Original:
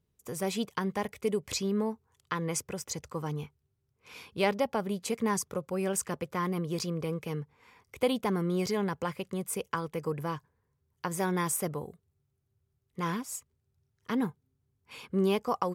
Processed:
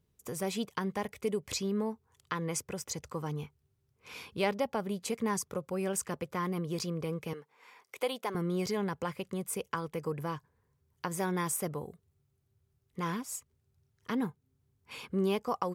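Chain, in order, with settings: 7.33–8.35 s: high-pass 460 Hz 12 dB/octave; in parallel at +1 dB: compression, threshold -44 dBFS, peak gain reduction 20 dB; on the sum: trim -4 dB

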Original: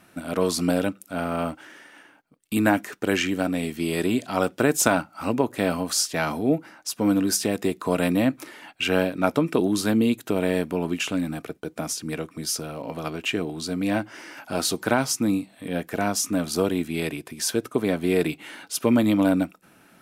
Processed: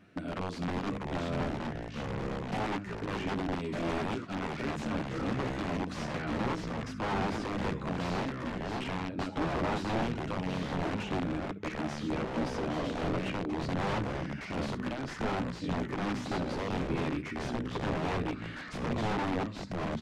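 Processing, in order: peaking EQ 920 Hz -11 dB 1.2 oct; hum notches 50/100/150/200 Hz; compression 5:1, threshold -28 dBFS, peak gain reduction 11 dB; peak limiter -22.5 dBFS, peak gain reduction 7.5 dB; early reflections 10 ms -4.5 dB, 67 ms -13.5 dB; integer overflow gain 25 dB; ever faster or slower copies 550 ms, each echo -4 st, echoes 2; tape spacing loss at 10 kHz 28 dB

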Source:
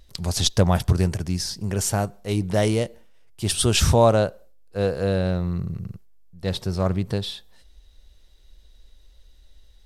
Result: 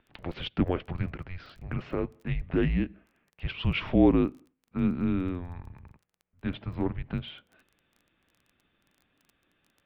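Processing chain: dynamic bell 1.3 kHz, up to -8 dB, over -38 dBFS, Q 0.8; mistuned SSB -270 Hz 280–2900 Hz; crackle 14 per s -46 dBFS

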